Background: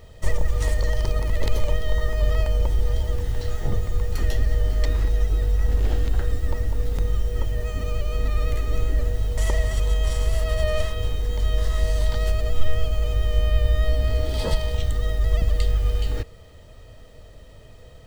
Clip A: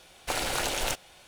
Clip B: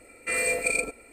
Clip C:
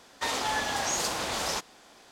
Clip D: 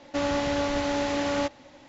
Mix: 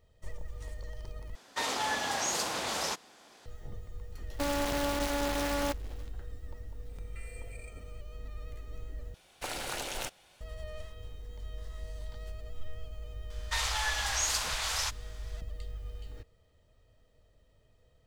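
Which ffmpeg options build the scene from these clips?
ffmpeg -i bed.wav -i cue0.wav -i cue1.wav -i cue2.wav -i cue3.wav -filter_complex "[3:a]asplit=2[link_01][link_02];[0:a]volume=-20dB[link_03];[link_01]highpass=frequency=98:poles=1[link_04];[4:a]acrusher=bits=5:dc=4:mix=0:aa=0.000001[link_05];[2:a]acompressor=threshold=-34dB:ratio=6:attack=3.2:release=140:knee=1:detection=peak[link_06];[link_02]highpass=1200[link_07];[link_03]asplit=3[link_08][link_09][link_10];[link_08]atrim=end=1.354[link_11];[link_04]atrim=end=2.11,asetpts=PTS-STARTPTS,volume=-2.5dB[link_12];[link_09]atrim=start=3.456:end=9.144[link_13];[1:a]atrim=end=1.27,asetpts=PTS-STARTPTS,volume=-7.5dB[link_14];[link_10]atrim=start=10.406[link_15];[link_05]atrim=end=1.88,asetpts=PTS-STARTPTS,volume=-6dB,afade=type=in:duration=0.1,afade=type=out:start_time=1.78:duration=0.1,adelay=187425S[link_16];[link_06]atrim=end=1.12,asetpts=PTS-STARTPTS,volume=-15.5dB,afade=type=in:duration=0.004:curve=hsin,afade=type=out:start_time=1.116:duration=0.004:curve=hsin,adelay=6890[link_17];[link_07]atrim=end=2.11,asetpts=PTS-STARTPTS,afade=type=in:duration=0.004:curve=hsin,afade=type=out:start_time=2.106:duration=0.004:curve=hsin,adelay=13300[link_18];[link_11][link_12]acrossfade=duration=0.004:curve1=hsin:curve2=hsin[link_19];[link_19][link_13]acrossfade=duration=0.004:curve1=hsin:curve2=hsin[link_20];[link_20][link_14]acrossfade=duration=0.004:curve1=hsin:curve2=hsin[link_21];[link_21][link_15]acrossfade=duration=0.004:curve1=hsin:curve2=hsin[link_22];[link_22][link_16][link_17][link_18]amix=inputs=4:normalize=0" out.wav

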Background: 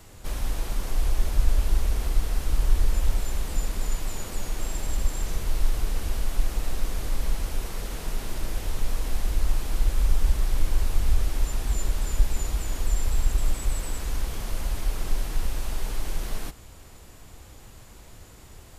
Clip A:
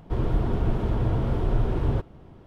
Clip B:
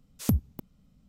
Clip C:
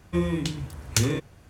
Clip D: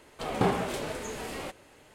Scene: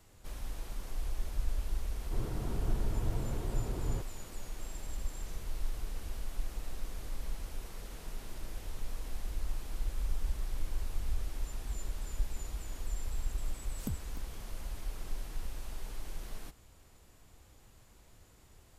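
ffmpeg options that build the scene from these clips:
ffmpeg -i bed.wav -i cue0.wav -i cue1.wav -filter_complex "[0:a]volume=-12.5dB[link_01];[1:a]atrim=end=2.46,asetpts=PTS-STARTPTS,volume=-12.5dB,afade=type=in:duration=0.004:curve=hsin,afade=type=out:start_time=2.456:duration=0.004:curve=hsin,adelay=2010[link_02];[2:a]atrim=end=1.08,asetpts=PTS-STARTPTS,volume=-13.5dB,afade=type=in:duration=0.004:curve=hsin,afade=type=out:start_time=1.076:duration=0.004:curve=hsin,adelay=13580[link_03];[link_01][link_02][link_03]amix=inputs=3:normalize=0" out.wav

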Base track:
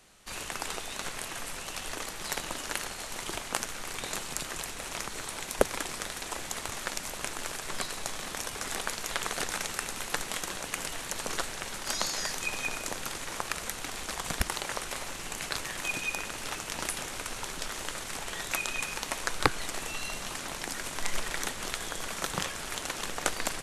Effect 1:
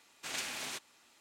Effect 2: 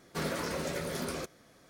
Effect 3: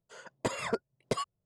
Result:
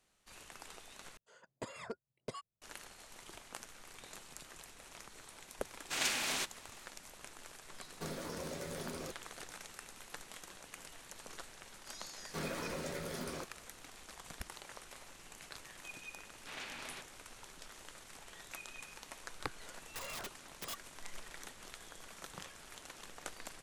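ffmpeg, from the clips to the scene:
ffmpeg -i bed.wav -i cue0.wav -i cue1.wav -i cue2.wav -filter_complex "[3:a]asplit=2[link_01][link_02];[1:a]asplit=2[link_03][link_04];[2:a]asplit=2[link_05][link_06];[0:a]volume=-16.5dB[link_07];[link_03]dynaudnorm=framelen=120:gausssize=3:maxgain=5.5dB[link_08];[link_05]acrossover=split=1100|3500[link_09][link_10][link_11];[link_09]acompressor=threshold=-37dB:ratio=4[link_12];[link_10]acompressor=threshold=-53dB:ratio=4[link_13];[link_11]acompressor=threshold=-47dB:ratio=4[link_14];[link_12][link_13][link_14]amix=inputs=3:normalize=0[link_15];[link_04]lowpass=3400[link_16];[link_02]aeval=exprs='(mod(35.5*val(0)+1,2)-1)/35.5':channel_layout=same[link_17];[link_07]asplit=2[link_18][link_19];[link_18]atrim=end=1.174[link_20];[link_01]atrim=end=1.45,asetpts=PTS-STARTPTS,volume=-12.5dB[link_21];[link_19]atrim=start=2.616[link_22];[link_08]atrim=end=1.2,asetpts=PTS-STARTPTS,volume=-1dB,afade=type=in:duration=0.004:curve=hsin,afade=type=out:start_time=1.196:duration=0.004:curve=hsin,adelay=5670[link_23];[link_15]atrim=end=1.69,asetpts=PTS-STARTPTS,volume=-4dB,afade=type=in:duration=0.004:curve=hsin,afade=type=out:start_time=1.686:duration=0.004:curve=hsin,adelay=346626S[link_24];[link_06]atrim=end=1.69,asetpts=PTS-STARTPTS,volume=-6.5dB,afade=type=in:duration=0.004:curve=hsin,afade=type=out:start_time=1.686:duration=0.004:curve=hsin,adelay=12190[link_25];[link_16]atrim=end=1.2,asetpts=PTS-STARTPTS,volume=-5dB,afade=type=in:duration=0.004:curve=hsin,afade=type=out:start_time=1.196:duration=0.004:curve=hsin,adelay=16230[link_26];[link_17]atrim=end=1.45,asetpts=PTS-STARTPTS,volume=-7dB,afade=type=in:duration=0.004:curve=hsin,afade=type=out:start_time=1.446:duration=0.004:curve=hsin,adelay=19510[link_27];[link_20][link_21]acrossfade=duration=0.004:curve1=hsin:curve2=hsin[link_28];[link_28][link_22]acrossfade=duration=0.004:curve1=hsin:curve2=hsin[link_29];[link_29][link_23][link_24][link_25][link_26][link_27]amix=inputs=6:normalize=0" out.wav

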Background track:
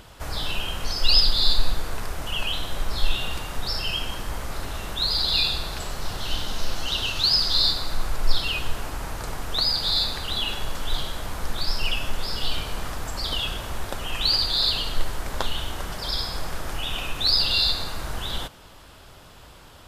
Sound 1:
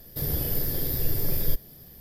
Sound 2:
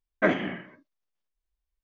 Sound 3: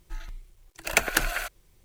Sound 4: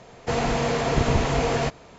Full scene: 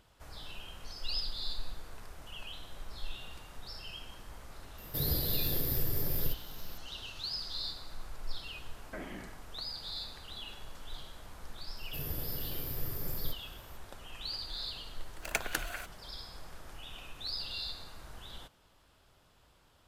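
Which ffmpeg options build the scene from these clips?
ffmpeg -i bed.wav -i cue0.wav -i cue1.wav -i cue2.wav -filter_complex "[1:a]asplit=2[link_01][link_02];[0:a]volume=-18dB[link_03];[link_01]alimiter=limit=-17dB:level=0:latency=1:release=176[link_04];[2:a]alimiter=limit=-21.5dB:level=0:latency=1:release=71[link_05];[link_04]atrim=end=2,asetpts=PTS-STARTPTS,volume=-3.5dB,afade=type=in:duration=0.004:curve=hsin,afade=type=out:start_time=1.996:duration=0.004:curve=hsin,adelay=4780[link_06];[link_05]atrim=end=1.83,asetpts=PTS-STARTPTS,volume=-13dB,afade=type=in:duration=0.004:curve=hsin,afade=type=out:start_time=1.826:duration=0.004:curve=hsin,adelay=8710[link_07];[link_02]atrim=end=2,asetpts=PTS-STARTPTS,volume=-11dB,afade=type=in:duration=0.004:curve=hsin,afade=type=out:start_time=1.996:duration=0.004:curve=hsin,adelay=11770[link_08];[3:a]atrim=end=1.84,asetpts=PTS-STARTPTS,volume=-11dB,afade=type=in:duration=0.004:curve=hsin,afade=type=out:start_time=1.836:duration=0.004:curve=hsin,adelay=14380[link_09];[link_03][link_06][link_07][link_08][link_09]amix=inputs=5:normalize=0" out.wav

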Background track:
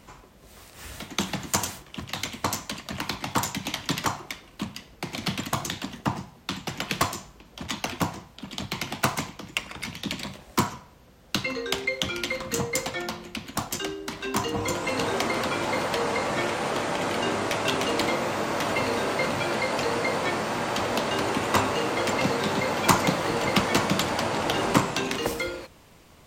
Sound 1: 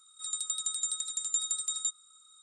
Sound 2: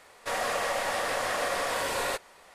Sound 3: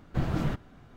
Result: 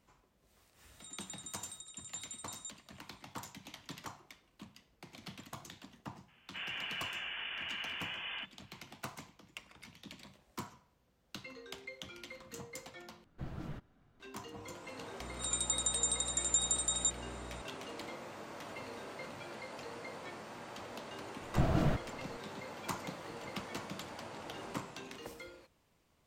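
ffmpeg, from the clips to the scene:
ffmpeg -i bed.wav -i cue0.wav -i cue1.wav -i cue2.wav -filter_complex "[1:a]asplit=2[link_01][link_02];[3:a]asplit=2[link_03][link_04];[0:a]volume=-20dB[link_05];[2:a]lowpass=frequency=3000:width_type=q:width=0.5098,lowpass=frequency=3000:width_type=q:width=0.6013,lowpass=frequency=3000:width_type=q:width=0.9,lowpass=frequency=3000:width_type=q:width=2.563,afreqshift=-3500[link_06];[link_02]aeval=exprs='val(0)+0.00447*(sin(2*PI*60*n/s)+sin(2*PI*2*60*n/s)/2+sin(2*PI*3*60*n/s)/3+sin(2*PI*4*60*n/s)/4+sin(2*PI*5*60*n/s)/5)':channel_layout=same[link_07];[link_04]equalizer=frequency=660:width=4.2:gain=8[link_08];[link_05]asplit=2[link_09][link_10];[link_09]atrim=end=13.244[link_11];[link_03]atrim=end=0.96,asetpts=PTS-STARTPTS,volume=-15dB[link_12];[link_10]atrim=start=14.196[link_13];[link_01]atrim=end=2.42,asetpts=PTS-STARTPTS,volume=-15dB,afade=type=in:duration=0.004:curve=hsin,afade=type=out:start_time=2.416:duration=0.004:curve=hsin,adelay=800[link_14];[link_06]atrim=end=2.54,asetpts=PTS-STARTPTS,volume=-11.5dB,afade=type=in:duration=0.004:curve=hsin,afade=type=out:start_time=2.536:duration=0.004:curve=hsin,adelay=6280[link_15];[link_07]atrim=end=2.42,asetpts=PTS-STARTPTS,volume=-0.5dB,afade=type=in:duration=0.004:curve=hsin,afade=type=out:start_time=2.416:duration=0.004:curve=hsin,adelay=15200[link_16];[link_08]atrim=end=0.96,asetpts=PTS-STARTPTS,volume=-2dB,afade=type=in:duration=0.004:curve=hsin,afade=type=out:start_time=0.956:duration=0.004:curve=hsin,adelay=21410[link_17];[link_11][link_12]acrossfade=duration=0.004:curve1=hsin:curve2=hsin[link_18];[link_18][link_13]acrossfade=duration=0.004:curve1=hsin:curve2=hsin[link_19];[link_19][link_14][link_15][link_16][link_17]amix=inputs=5:normalize=0" out.wav

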